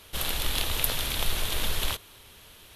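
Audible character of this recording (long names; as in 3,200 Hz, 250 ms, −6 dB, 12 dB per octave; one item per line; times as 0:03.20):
background noise floor −52 dBFS
spectral slope −2.0 dB per octave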